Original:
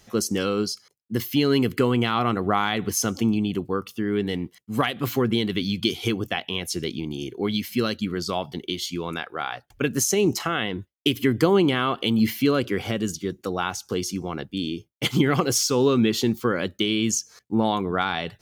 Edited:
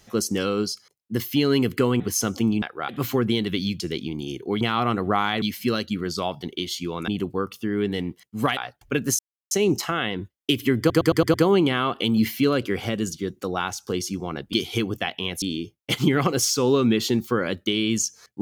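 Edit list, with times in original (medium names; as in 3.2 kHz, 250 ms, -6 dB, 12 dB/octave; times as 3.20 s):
2.00–2.81 s: move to 7.53 s
3.43–4.92 s: swap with 9.19–9.46 s
5.83–6.72 s: move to 14.55 s
10.08 s: insert silence 0.32 s
11.36 s: stutter 0.11 s, 6 plays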